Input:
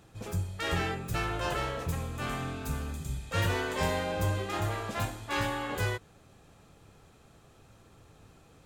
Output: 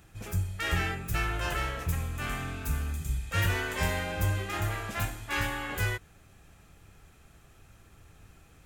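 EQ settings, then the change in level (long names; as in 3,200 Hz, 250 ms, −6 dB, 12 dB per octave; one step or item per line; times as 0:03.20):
graphic EQ with 10 bands 125 Hz −7 dB, 250 Hz −7 dB, 500 Hz −10 dB, 1,000 Hz −8 dB, 4,000 Hz −8 dB, 8,000 Hz −4 dB
+7.5 dB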